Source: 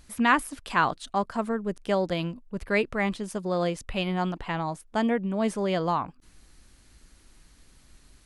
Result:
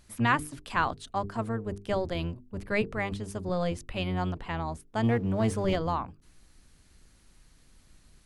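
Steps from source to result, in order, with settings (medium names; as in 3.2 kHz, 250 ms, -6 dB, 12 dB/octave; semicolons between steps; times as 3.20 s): octave divider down 1 oct, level 0 dB; hum notches 50/100/150/200/250/300/350/400/450 Hz; 5.03–5.76 s: waveshaping leveller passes 1; trim -4 dB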